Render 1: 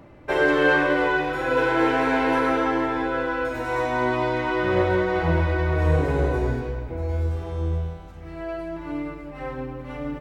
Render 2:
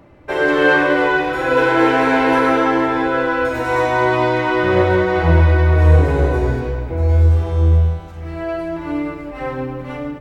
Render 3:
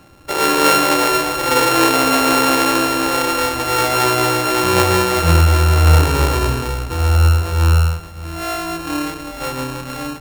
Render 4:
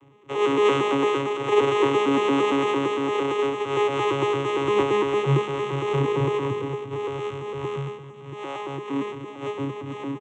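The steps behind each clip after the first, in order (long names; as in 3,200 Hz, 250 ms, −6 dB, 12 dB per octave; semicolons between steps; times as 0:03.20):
parametric band 80 Hz +6 dB 0.26 octaves; mains-hum notches 50/100/150/200/250 Hz; automatic gain control gain up to 7 dB; level +1 dB
samples sorted by size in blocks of 32 samples
vocoder with an arpeggio as carrier bare fifth, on C#3, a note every 114 ms; phaser with its sweep stopped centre 970 Hz, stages 8; single-tap delay 389 ms −20 dB; level −1.5 dB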